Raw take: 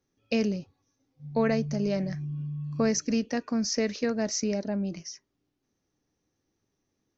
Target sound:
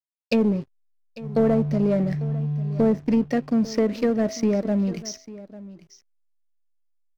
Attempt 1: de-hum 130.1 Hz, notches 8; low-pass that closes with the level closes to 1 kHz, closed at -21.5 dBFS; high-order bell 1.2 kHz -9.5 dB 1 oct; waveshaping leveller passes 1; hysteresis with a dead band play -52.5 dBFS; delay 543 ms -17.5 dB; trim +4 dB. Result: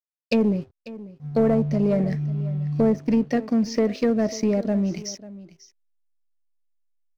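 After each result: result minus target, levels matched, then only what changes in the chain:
echo 304 ms early; hysteresis with a dead band: distortion -10 dB
change: delay 847 ms -17.5 dB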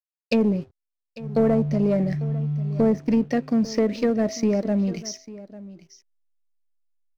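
hysteresis with a dead band: distortion -10 dB
change: hysteresis with a dead band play -42 dBFS

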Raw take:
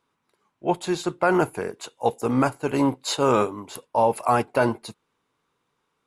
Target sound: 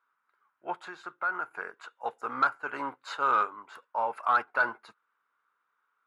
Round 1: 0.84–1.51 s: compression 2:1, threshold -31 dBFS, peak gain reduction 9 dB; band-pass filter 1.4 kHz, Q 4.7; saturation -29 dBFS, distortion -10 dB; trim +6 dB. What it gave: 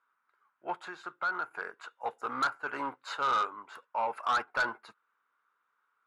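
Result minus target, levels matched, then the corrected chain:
saturation: distortion +12 dB
0.84–1.51 s: compression 2:1, threshold -31 dBFS, peak gain reduction 9 dB; band-pass filter 1.4 kHz, Q 4.7; saturation -19 dBFS, distortion -22 dB; trim +6 dB

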